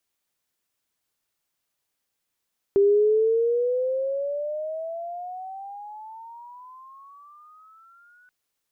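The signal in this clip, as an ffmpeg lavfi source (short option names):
-f lavfi -i "aevalsrc='pow(10,(-14-39*t/5.53)/20)*sin(2*PI*395*5.53/(23*log(2)/12)*(exp(23*log(2)/12*t/5.53)-1))':d=5.53:s=44100"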